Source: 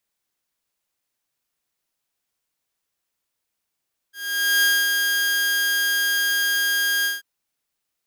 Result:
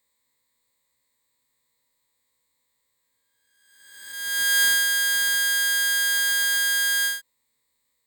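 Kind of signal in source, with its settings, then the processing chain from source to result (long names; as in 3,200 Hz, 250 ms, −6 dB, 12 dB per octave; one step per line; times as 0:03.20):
note with an ADSR envelope saw 1,620 Hz, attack 493 ms, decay 241 ms, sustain −4 dB, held 2.92 s, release 167 ms −12.5 dBFS
peak hold with a rise ahead of every peak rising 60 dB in 1.18 s
EQ curve with evenly spaced ripples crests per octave 1, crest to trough 15 dB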